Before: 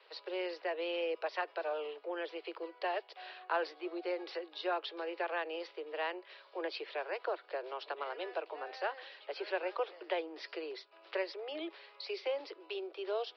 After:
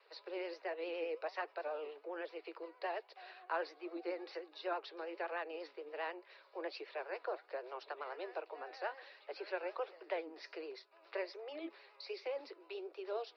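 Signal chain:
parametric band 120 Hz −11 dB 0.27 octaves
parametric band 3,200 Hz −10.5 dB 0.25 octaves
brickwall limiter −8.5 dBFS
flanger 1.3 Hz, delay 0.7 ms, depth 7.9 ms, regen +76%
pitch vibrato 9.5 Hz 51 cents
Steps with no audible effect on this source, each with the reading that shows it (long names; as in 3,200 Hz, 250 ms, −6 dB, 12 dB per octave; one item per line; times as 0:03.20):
parametric band 120 Hz: nothing at its input below 290 Hz
brickwall limiter −8.5 dBFS: peak of its input −21.5 dBFS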